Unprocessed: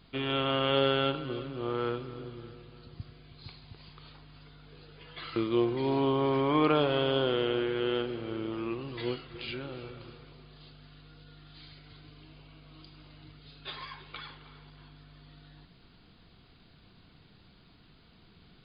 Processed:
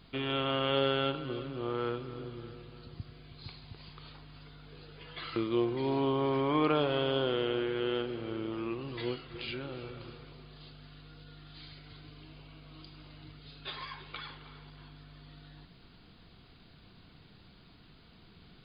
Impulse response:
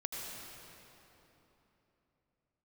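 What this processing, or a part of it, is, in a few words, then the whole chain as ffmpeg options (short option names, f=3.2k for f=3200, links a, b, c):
parallel compression: -filter_complex "[0:a]asplit=2[a][b];[b]acompressor=threshold=-41dB:ratio=6,volume=-2.5dB[c];[a][c]amix=inputs=2:normalize=0,volume=-3.5dB"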